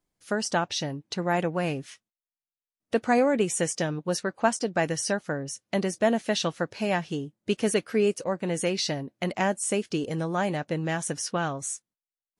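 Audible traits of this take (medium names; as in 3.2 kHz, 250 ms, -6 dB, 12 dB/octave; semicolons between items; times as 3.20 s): noise floor -96 dBFS; spectral tilt -4.0 dB/octave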